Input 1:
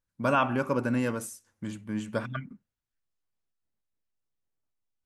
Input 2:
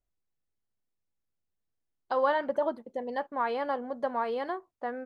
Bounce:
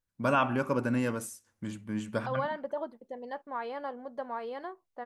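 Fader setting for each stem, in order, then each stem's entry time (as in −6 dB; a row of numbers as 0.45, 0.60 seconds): −1.5, −6.5 decibels; 0.00, 0.15 seconds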